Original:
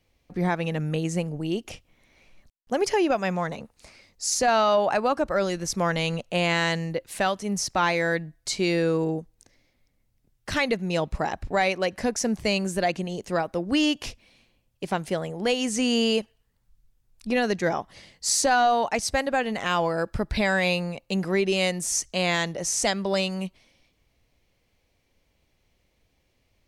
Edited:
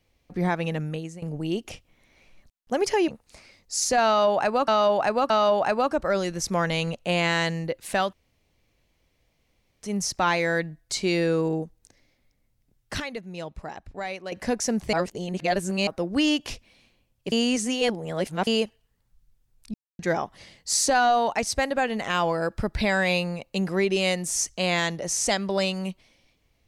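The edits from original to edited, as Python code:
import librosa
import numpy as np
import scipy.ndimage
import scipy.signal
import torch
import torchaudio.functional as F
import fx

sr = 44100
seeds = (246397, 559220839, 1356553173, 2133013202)

y = fx.edit(x, sr, fx.fade_out_to(start_s=0.72, length_s=0.5, floor_db=-20.5),
    fx.cut(start_s=3.08, length_s=0.5),
    fx.repeat(start_s=4.56, length_s=0.62, count=3),
    fx.insert_room_tone(at_s=7.39, length_s=1.7),
    fx.clip_gain(start_s=10.56, length_s=1.32, db=-10.0),
    fx.reverse_span(start_s=12.49, length_s=0.94),
    fx.reverse_span(start_s=14.88, length_s=1.15),
    fx.silence(start_s=17.3, length_s=0.25), tone=tone)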